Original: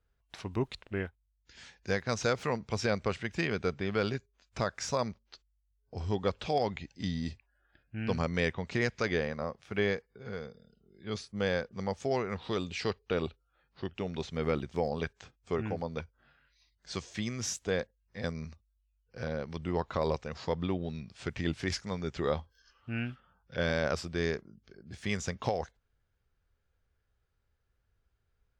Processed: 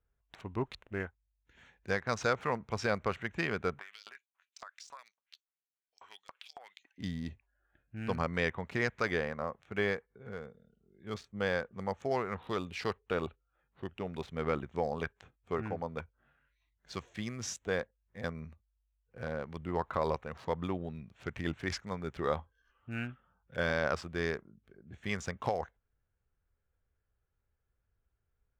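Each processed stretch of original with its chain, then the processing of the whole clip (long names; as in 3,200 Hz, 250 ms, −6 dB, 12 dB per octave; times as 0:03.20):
0:03.79–0:06.98: auto-filter high-pass saw up 3.6 Hz 860–7,800 Hz + downward compressor 16 to 1, threshold −40 dBFS
whole clip: adaptive Wiener filter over 9 samples; dynamic equaliser 1,200 Hz, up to +7 dB, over −46 dBFS, Q 0.78; level −4 dB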